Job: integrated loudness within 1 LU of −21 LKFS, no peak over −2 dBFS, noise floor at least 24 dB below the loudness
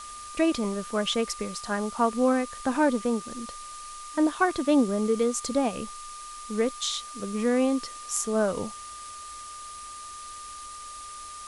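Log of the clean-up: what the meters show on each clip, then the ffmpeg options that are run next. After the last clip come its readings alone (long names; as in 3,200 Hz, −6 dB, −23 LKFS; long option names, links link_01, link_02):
interfering tone 1,200 Hz; level of the tone −40 dBFS; background noise floor −41 dBFS; target noise floor −51 dBFS; integrated loudness −27.0 LKFS; sample peak −10.0 dBFS; target loudness −21.0 LKFS
→ -af "bandreject=frequency=1200:width=30"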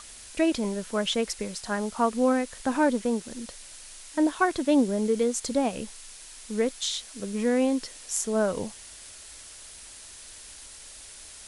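interfering tone none found; background noise floor −46 dBFS; target noise floor −51 dBFS
→ -af "afftdn=noise_reduction=6:noise_floor=-46"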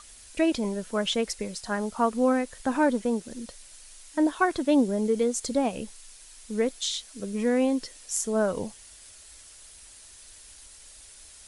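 background noise floor −50 dBFS; target noise floor −51 dBFS
→ -af "afftdn=noise_reduction=6:noise_floor=-50"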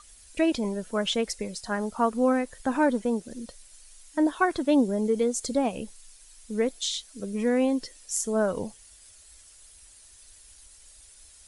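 background noise floor −53 dBFS; integrated loudness −27.0 LKFS; sample peak −10.5 dBFS; target loudness −21.0 LKFS
→ -af "volume=6dB"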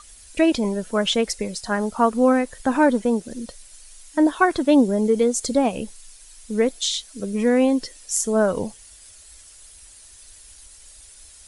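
integrated loudness −21.0 LKFS; sample peak −4.5 dBFS; background noise floor −47 dBFS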